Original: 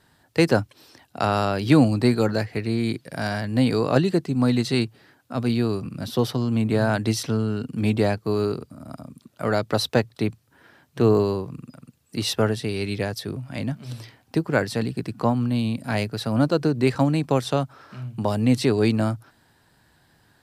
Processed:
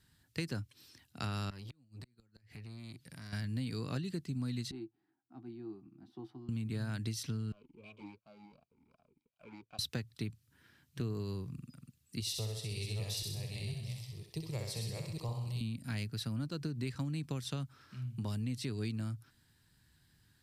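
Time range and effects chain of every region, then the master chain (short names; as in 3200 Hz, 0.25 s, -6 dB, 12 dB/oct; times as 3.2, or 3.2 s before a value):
1.5–3.33 flipped gate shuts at -11 dBFS, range -40 dB + compressor 2.5:1, threshold -36 dBFS + core saturation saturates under 890 Hz
4.71–6.49 double band-pass 510 Hz, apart 1.2 oct + doubler 15 ms -10 dB
7.52–9.79 minimum comb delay 1.3 ms + vowel sweep a-u 2.7 Hz
12.2–15.61 reverse delay 0.514 s, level -4 dB + fixed phaser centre 620 Hz, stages 4 + thinning echo 64 ms, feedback 56%, high-pass 360 Hz, level -4.5 dB
whole clip: passive tone stack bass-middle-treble 6-0-2; compressor, threshold -42 dBFS; gain +8 dB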